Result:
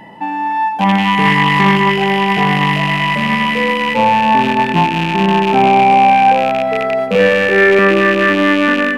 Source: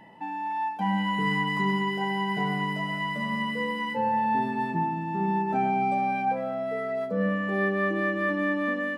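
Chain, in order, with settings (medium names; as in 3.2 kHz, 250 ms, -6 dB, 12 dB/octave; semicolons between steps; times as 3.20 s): rattle on loud lows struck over -39 dBFS, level -23 dBFS; 7.15–7.79 s: comb 2.2 ms, depth 86%; on a send: filtered feedback delay 89 ms, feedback 85%, low-pass 2 kHz, level -13 dB; on the sum: loudness maximiser +14 dB; loudspeaker Doppler distortion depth 0.18 ms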